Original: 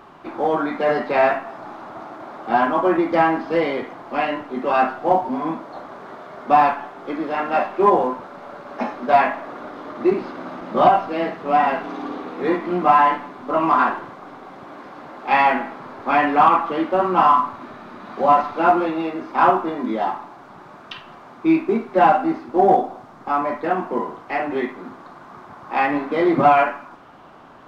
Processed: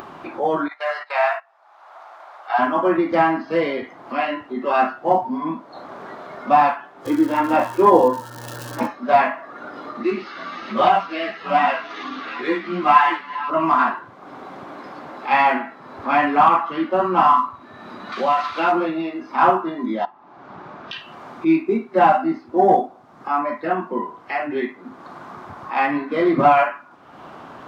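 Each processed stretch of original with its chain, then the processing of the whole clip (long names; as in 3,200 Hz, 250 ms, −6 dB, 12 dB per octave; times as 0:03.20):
0:00.68–0:02.59: noise gate −27 dBFS, range −14 dB + high-pass filter 670 Hz 24 dB per octave
0:07.05–0:08.86: hollow resonant body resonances 310/490/920/3,300 Hz, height 12 dB, ringing for 75 ms + surface crackle 300 per second −27 dBFS + hum with harmonics 120 Hz, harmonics 15, −39 dBFS −3 dB per octave
0:10.03–0:13.50: delay that plays each chunk backwards 397 ms, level −13.5 dB + parametric band 3,300 Hz +8.5 dB 2.6 octaves + string-ensemble chorus
0:18.12–0:18.72: parametric band 3,800 Hz +12 dB 2.4 octaves + downward compressor 2 to 1, threshold −18 dBFS
0:20.05–0:20.93: high-frequency loss of the air 130 metres + downward compressor 4 to 1, threshold −37 dBFS
whole clip: noise reduction from a noise print of the clip's start 10 dB; high-pass filter 59 Hz; upward compression, threshold −24 dBFS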